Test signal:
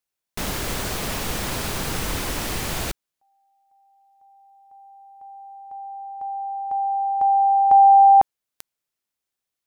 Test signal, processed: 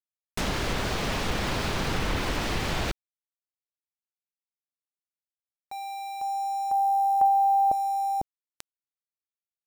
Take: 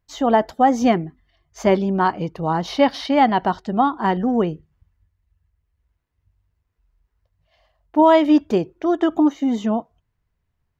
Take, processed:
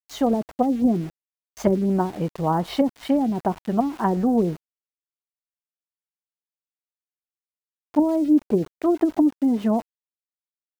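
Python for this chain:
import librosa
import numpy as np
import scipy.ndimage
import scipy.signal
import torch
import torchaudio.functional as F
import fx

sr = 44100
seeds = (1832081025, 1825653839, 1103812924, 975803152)

y = fx.env_lowpass_down(x, sr, base_hz=320.0, full_db=-13.0)
y = np.where(np.abs(y) >= 10.0 ** (-37.5 / 20.0), y, 0.0)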